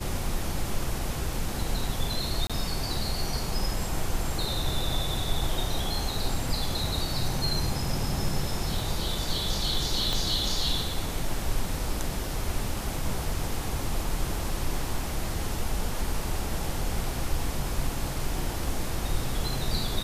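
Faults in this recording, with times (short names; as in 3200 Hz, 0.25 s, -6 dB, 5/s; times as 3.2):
2.47–2.5 gap 26 ms
10.13 pop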